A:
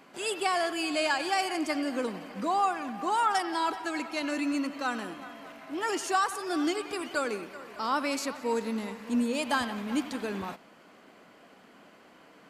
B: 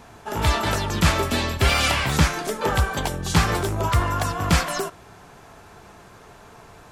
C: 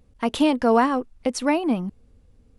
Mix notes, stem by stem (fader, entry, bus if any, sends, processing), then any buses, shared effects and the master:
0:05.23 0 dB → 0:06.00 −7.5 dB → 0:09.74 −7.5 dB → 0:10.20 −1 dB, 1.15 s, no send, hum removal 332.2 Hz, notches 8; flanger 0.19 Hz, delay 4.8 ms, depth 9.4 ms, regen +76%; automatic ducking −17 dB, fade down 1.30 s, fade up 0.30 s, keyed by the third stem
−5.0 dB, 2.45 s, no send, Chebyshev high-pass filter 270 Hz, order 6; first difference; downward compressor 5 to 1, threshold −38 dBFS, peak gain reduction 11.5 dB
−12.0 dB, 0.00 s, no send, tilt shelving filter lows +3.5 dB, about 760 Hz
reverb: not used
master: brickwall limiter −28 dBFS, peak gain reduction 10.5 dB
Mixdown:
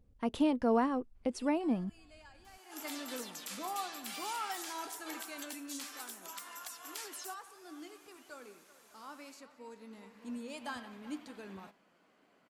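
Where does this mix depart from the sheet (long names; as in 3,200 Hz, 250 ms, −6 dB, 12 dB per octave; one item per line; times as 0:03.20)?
stem A 0.0 dB → −8.5 dB
master: missing brickwall limiter −28 dBFS, peak gain reduction 10.5 dB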